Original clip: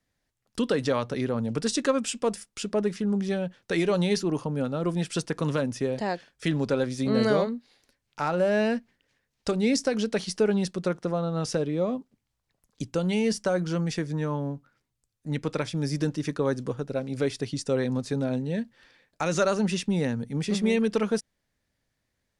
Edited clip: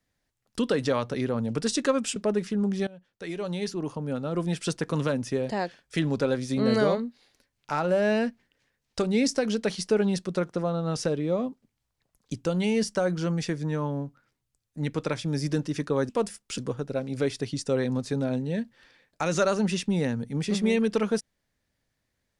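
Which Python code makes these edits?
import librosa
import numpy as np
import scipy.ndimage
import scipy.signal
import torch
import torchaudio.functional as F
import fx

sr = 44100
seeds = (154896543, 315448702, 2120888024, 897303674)

y = fx.edit(x, sr, fx.move(start_s=2.16, length_s=0.49, to_s=16.58),
    fx.fade_in_from(start_s=3.36, length_s=1.71, floor_db=-20.0), tone=tone)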